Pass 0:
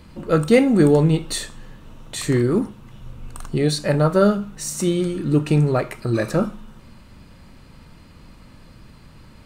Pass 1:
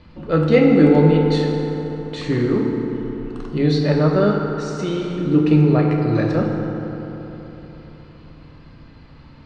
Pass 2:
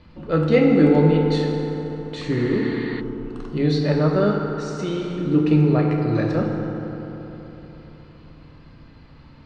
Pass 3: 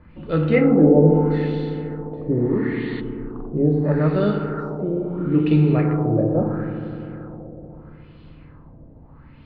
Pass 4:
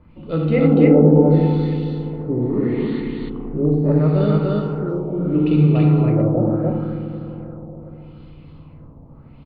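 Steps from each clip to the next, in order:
LPF 4700 Hz 24 dB/oct; FDN reverb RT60 3.9 s, high-frequency decay 0.45×, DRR 0 dB; gain -2 dB
spectral repair 2.39–2.98, 650–4800 Hz before; gain -2.5 dB
low shelf 460 Hz +6.5 dB; LFO low-pass sine 0.76 Hz 600–3500 Hz; gain -5 dB
bell 1700 Hz -11 dB 0.46 oct; on a send: loudspeakers at several distances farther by 25 m -7 dB, 99 m -1 dB; on the sum: gain -1 dB

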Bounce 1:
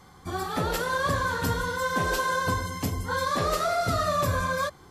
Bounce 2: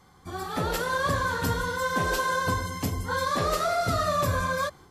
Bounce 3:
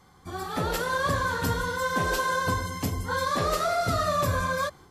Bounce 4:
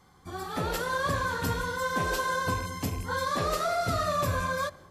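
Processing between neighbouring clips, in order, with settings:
AGC gain up to 5 dB; gain -5 dB
nothing audible
rattling part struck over -31 dBFS, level -36 dBFS; on a send at -22 dB: reverb RT60 2.4 s, pre-delay 3 ms; on the sum: gain -2.5 dB

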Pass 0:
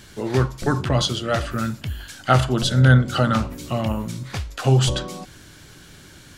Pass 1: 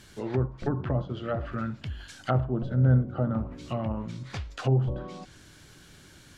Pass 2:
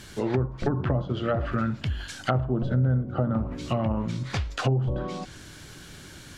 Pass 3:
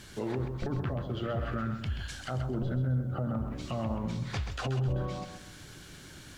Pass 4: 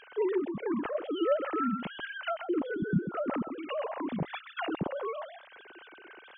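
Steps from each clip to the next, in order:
treble ducked by the level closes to 690 Hz, closed at -16.5 dBFS; gain -7 dB
compressor 4:1, threshold -29 dBFS, peak gain reduction 11 dB; gain +7.5 dB
limiter -20 dBFS, peak gain reduction 11 dB; lo-fi delay 0.131 s, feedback 35%, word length 10-bit, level -8 dB; gain -4.5 dB
sine-wave speech

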